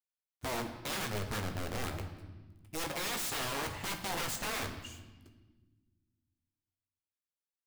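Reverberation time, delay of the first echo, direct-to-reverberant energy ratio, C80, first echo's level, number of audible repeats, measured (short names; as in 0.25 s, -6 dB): 1.3 s, none, 4.0 dB, 10.0 dB, none, none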